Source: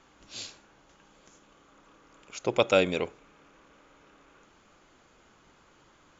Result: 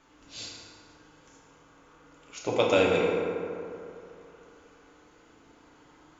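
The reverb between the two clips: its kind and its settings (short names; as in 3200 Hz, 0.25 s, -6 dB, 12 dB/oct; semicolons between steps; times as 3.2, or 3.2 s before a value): FDN reverb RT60 2.7 s, high-frequency decay 0.45×, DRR -4 dB; gain -3.5 dB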